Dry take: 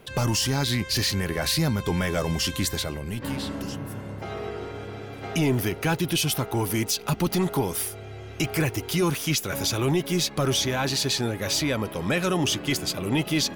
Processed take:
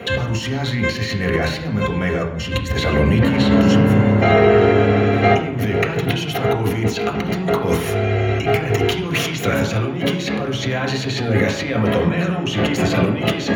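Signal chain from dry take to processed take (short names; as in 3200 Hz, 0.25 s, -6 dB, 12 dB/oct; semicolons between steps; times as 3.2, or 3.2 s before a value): 2.24–2.74 low shelf 240 Hz +10.5 dB; negative-ratio compressor -33 dBFS, ratio -1; reverb RT60 0.85 s, pre-delay 3 ms, DRR 0.5 dB; gain +1 dB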